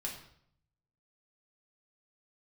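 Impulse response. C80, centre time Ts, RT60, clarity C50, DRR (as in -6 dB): 9.5 dB, 28 ms, 0.65 s, 6.5 dB, -2.0 dB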